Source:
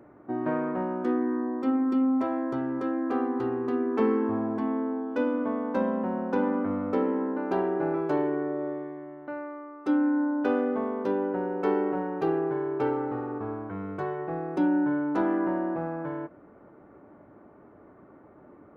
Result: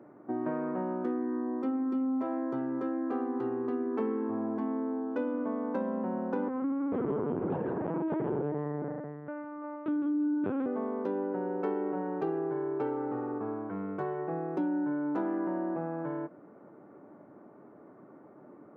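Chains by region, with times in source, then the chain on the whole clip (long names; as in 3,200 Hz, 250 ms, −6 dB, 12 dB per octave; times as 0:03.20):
0:06.48–0:10.66: multi-tap delay 45/154/161/340/355/485 ms −13.5/−5.5/−9.5/−9.5/−10/−13 dB + linear-prediction vocoder at 8 kHz pitch kept
whole clip: high-pass filter 130 Hz 24 dB per octave; high-shelf EQ 2,300 Hz −11 dB; downward compressor 3 to 1, threshold −30 dBFS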